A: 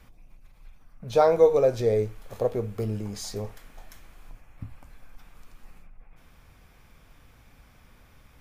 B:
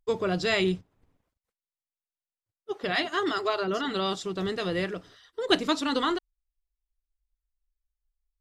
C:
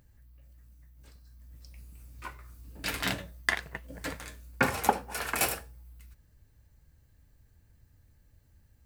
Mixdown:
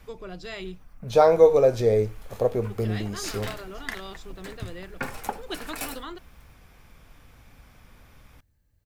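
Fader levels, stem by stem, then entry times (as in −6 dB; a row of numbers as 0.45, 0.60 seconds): +2.5, −12.0, −6.5 decibels; 0.00, 0.00, 0.40 seconds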